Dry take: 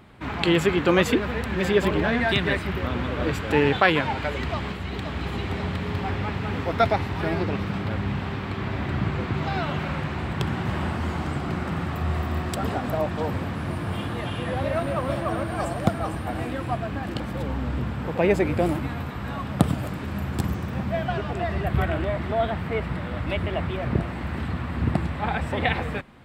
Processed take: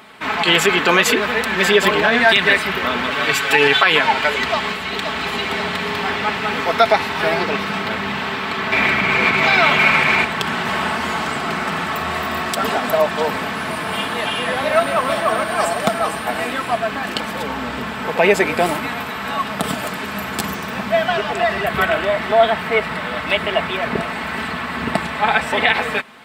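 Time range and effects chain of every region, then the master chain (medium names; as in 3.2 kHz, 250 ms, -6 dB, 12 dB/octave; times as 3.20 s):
3.10–3.84 s: peaking EQ 380 Hz -7 dB 2.6 oct + comb 7.2 ms, depth 98%
8.72–10.25 s: peaking EQ 2.3 kHz +12.5 dB 0.21 oct + level flattener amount 70%
whole clip: high-pass 1.1 kHz 6 dB/octave; comb 4.6 ms, depth 50%; loudness maximiser +15 dB; trim -1 dB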